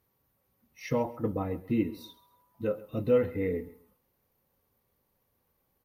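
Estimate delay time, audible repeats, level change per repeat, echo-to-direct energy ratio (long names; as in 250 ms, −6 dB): 134 ms, 2, −11.5 dB, −18.5 dB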